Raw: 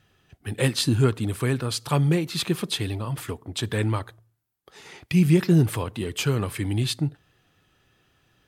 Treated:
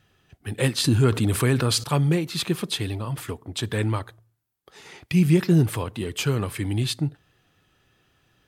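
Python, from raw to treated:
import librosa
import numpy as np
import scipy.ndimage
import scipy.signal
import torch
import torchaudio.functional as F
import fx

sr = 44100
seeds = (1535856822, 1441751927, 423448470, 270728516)

y = fx.env_flatten(x, sr, amount_pct=50, at=(0.84, 1.84))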